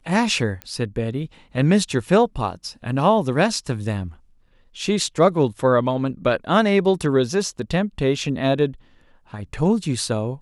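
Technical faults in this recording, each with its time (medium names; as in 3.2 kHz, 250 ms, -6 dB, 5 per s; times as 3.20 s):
0.62 s: pop -17 dBFS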